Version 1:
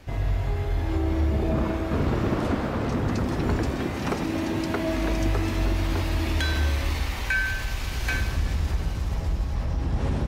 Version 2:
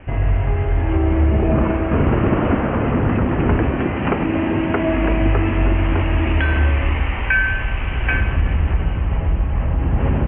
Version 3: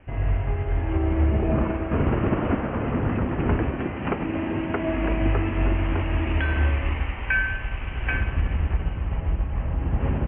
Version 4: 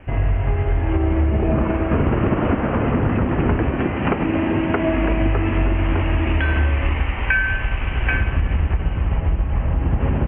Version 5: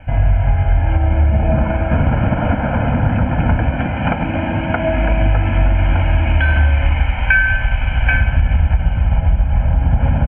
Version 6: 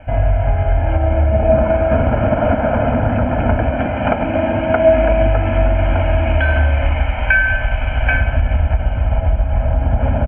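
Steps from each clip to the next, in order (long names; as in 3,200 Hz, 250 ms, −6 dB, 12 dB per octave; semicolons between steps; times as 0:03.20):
Butterworth low-pass 3,000 Hz 96 dB per octave; level +8 dB
expander for the loud parts 1.5 to 1, over −25 dBFS; level −4.5 dB
downward compressor, threshold −23 dBFS, peak gain reduction 6.5 dB; level +8.5 dB
comb filter 1.3 ms, depth 99%
thirty-one-band graphic EQ 160 Hz −9 dB, 250 Hz +4 dB, 400 Hz +7 dB, 630 Hz +11 dB, 1,250 Hz +4 dB; level −1.5 dB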